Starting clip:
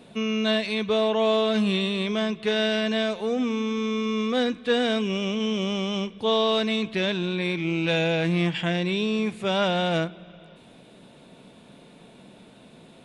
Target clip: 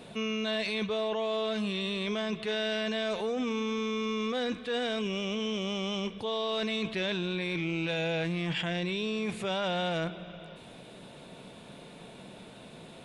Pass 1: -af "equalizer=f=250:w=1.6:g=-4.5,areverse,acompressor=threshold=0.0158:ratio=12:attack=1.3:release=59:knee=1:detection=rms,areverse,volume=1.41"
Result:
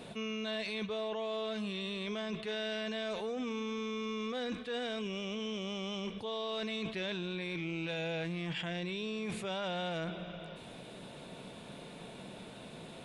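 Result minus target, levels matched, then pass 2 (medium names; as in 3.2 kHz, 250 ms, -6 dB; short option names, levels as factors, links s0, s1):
compression: peak gain reduction +6 dB
-af "equalizer=f=250:w=1.6:g=-4.5,areverse,acompressor=threshold=0.0335:ratio=12:attack=1.3:release=59:knee=1:detection=rms,areverse,volume=1.41"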